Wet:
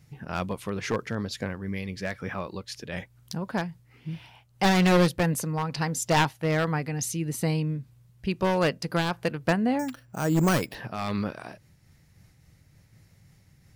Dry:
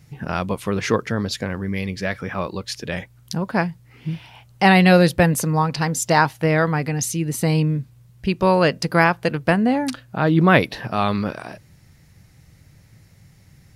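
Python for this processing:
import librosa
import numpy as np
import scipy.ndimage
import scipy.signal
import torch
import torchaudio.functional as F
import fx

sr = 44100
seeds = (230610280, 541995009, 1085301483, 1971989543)

y = np.minimum(x, 2.0 * 10.0 ** (-12.0 / 20.0) - x)
y = fx.resample_bad(y, sr, factor=6, down='filtered', up='hold', at=(9.79, 10.75))
y = fx.am_noise(y, sr, seeds[0], hz=5.7, depth_pct=65)
y = y * librosa.db_to_amplitude(-4.0)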